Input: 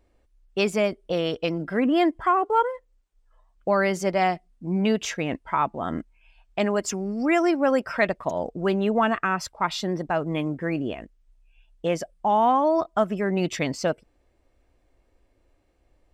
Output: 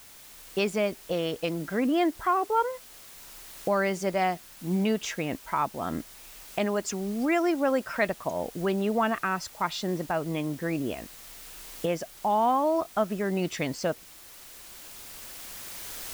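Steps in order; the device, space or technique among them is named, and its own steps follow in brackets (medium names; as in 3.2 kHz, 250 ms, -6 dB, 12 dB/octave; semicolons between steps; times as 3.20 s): cheap recorder with automatic gain (white noise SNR 21 dB; recorder AGC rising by 5.6 dB/s); trim -4 dB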